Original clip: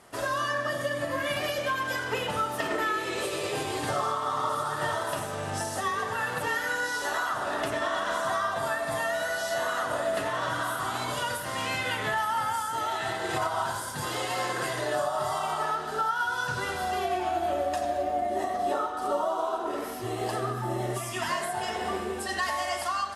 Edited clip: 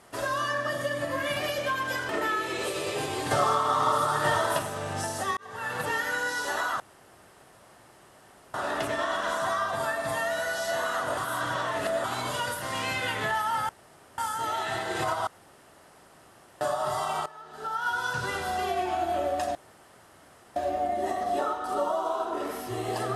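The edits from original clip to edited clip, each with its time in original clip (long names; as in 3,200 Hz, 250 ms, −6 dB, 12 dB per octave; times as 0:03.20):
0:02.09–0:02.66: remove
0:03.88–0:05.16: clip gain +4.5 dB
0:05.94–0:06.35: fade in
0:07.37: splice in room tone 1.74 s
0:10.00–0:10.87: reverse
0:12.52: splice in room tone 0.49 s
0:13.61–0:14.95: fill with room tone
0:15.60–0:16.22: fade in quadratic, from −19 dB
0:17.89: splice in room tone 1.01 s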